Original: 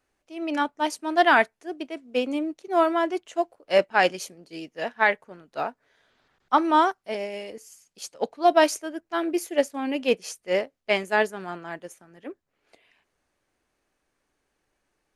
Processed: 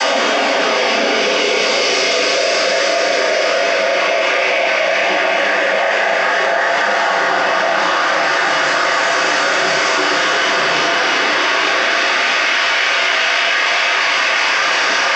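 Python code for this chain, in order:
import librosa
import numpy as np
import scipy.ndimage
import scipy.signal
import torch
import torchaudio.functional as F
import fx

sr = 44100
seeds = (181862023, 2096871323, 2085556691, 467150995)

p1 = x + 0.5 * 10.0 ** (-20.0 / 20.0) * np.sign(x)
p2 = scipy.signal.sosfilt(scipy.signal.butter(2, 1000.0, 'highpass', fs=sr, output='sos'), p1)
p3 = fx.peak_eq(p2, sr, hz=5300.0, db=9.5, octaves=0.28)
p4 = np.clip(p3, -10.0 ** (-17.5 / 20.0), 10.0 ** (-17.5 / 20.0))
p5 = p3 + (p4 * librosa.db_to_amplitude(-5.5))
p6 = fx.paulstretch(p5, sr, seeds[0], factor=4.3, window_s=1.0, from_s=9.77)
p7 = fx.noise_vocoder(p6, sr, seeds[1], bands=16)
p8 = fx.air_absorb(p7, sr, metres=220.0)
p9 = fx.doubler(p8, sr, ms=34.0, db=-5.5)
p10 = fx.room_shoebox(p9, sr, seeds[2], volume_m3=61.0, walls='mixed', distance_m=2.8)
p11 = fx.env_flatten(p10, sr, amount_pct=100)
y = p11 * librosa.db_to_amplitude(-7.5)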